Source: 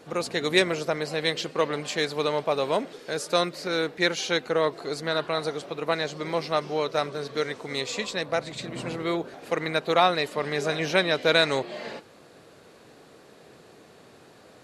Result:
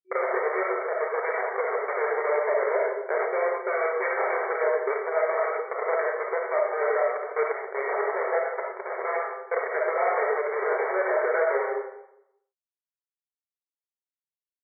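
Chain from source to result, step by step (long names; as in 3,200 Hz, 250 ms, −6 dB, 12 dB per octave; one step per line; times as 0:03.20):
reverb reduction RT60 1.1 s
comparator with hysteresis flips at −28 dBFS
comb and all-pass reverb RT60 0.8 s, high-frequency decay 0.65×, pre-delay 5 ms, DRR −3 dB
downward compressor, threshold −25 dBFS, peak gain reduction 7.5 dB
brick-wall band-pass 370–2,300 Hz
level +8 dB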